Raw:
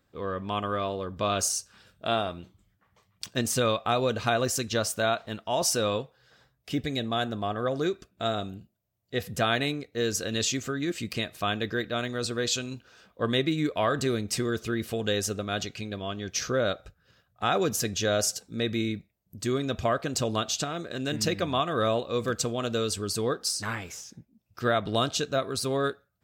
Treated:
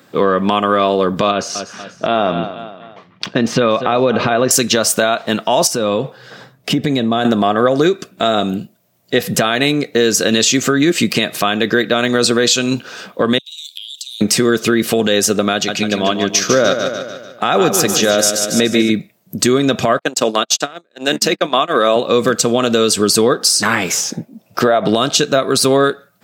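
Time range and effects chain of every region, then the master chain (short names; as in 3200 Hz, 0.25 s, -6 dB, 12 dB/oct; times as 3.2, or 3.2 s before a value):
1.31–4.51 feedback echo 0.239 s, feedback 39%, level -18.5 dB + compressor 2.5:1, threshold -28 dBFS + air absorption 250 m
5.67–7.25 tilt -1.5 dB/oct + compressor 12:1, threshold -33 dBFS
13.38–14.21 steep high-pass 3000 Hz 72 dB/oct + compressor, threshold -50 dBFS
15.53–18.9 feedback echo 0.147 s, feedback 50%, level -7.5 dB + upward expander, over -38 dBFS
19.99–21.96 gate -30 dBFS, range -45 dB + Bessel high-pass 290 Hz
24.03–24.89 bell 640 Hz +9 dB 1.4 oct + compressor 4:1, threshold -28 dBFS
whole clip: HPF 150 Hz 24 dB/oct; compressor, threshold -33 dBFS; maximiser +25 dB; gain -1 dB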